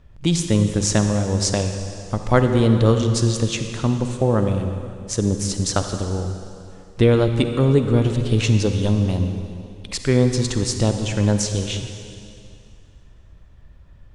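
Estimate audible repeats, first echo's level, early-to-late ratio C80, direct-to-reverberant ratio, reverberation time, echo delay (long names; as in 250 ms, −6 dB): no echo audible, no echo audible, 7.0 dB, 6.0 dB, 2.4 s, no echo audible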